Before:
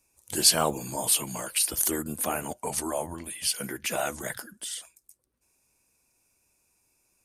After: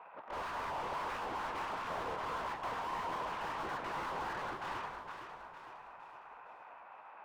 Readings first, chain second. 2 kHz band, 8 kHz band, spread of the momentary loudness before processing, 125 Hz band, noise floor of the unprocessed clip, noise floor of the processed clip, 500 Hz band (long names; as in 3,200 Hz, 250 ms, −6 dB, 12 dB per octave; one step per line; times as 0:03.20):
−4.5 dB, −33.5 dB, 15 LU, −13.0 dB, −74 dBFS, −55 dBFS, −10.0 dB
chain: running median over 41 samples
low-pass filter 2,600 Hz 24 dB per octave
notch filter 1,700 Hz, Q 28
gate on every frequency bin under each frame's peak −15 dB weak
parametric band 1,000 Hz +13 dB 0.88 octaves
reversed playback
downward compressor, threshold −43 dBFS, peak gain reduction 11.5 dB
reversed playback
mid-hump overdrive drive 41 dB, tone 1,400 Hz, clips at −34 dBFS
on a send: delay that swaps between a low-pass and a high-pass 230 ms, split 890 Hz, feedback 69%, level −4 dB
on the sum: level +1.5 dB